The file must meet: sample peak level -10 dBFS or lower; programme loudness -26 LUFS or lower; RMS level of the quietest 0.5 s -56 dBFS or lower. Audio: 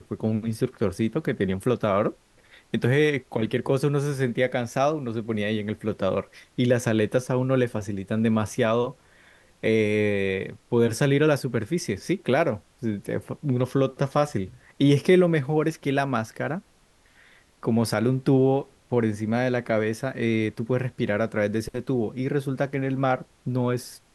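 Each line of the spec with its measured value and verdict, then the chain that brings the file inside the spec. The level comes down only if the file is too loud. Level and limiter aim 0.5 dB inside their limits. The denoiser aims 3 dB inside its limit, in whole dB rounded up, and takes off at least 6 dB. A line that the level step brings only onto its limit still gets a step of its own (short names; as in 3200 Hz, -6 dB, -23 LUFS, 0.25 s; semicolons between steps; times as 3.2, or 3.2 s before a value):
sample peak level -7.0 dBFS: fail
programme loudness -25.0 LUFS: fail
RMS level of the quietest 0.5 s -59 dBFS: OK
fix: gain -1.5 dB; limiter -10.5 dBFS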